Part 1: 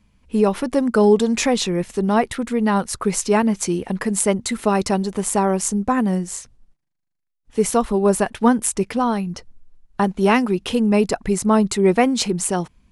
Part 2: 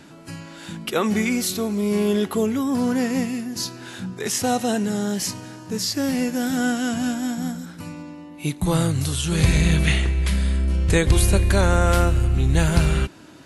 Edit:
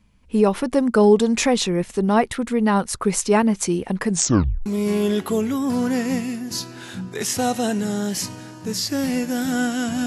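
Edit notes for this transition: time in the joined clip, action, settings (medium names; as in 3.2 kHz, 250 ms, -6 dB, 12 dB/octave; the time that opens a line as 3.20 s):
part 1
4.09 s: tape stop 0.57 s
4.66 s: go over to part 2 from 1.71 s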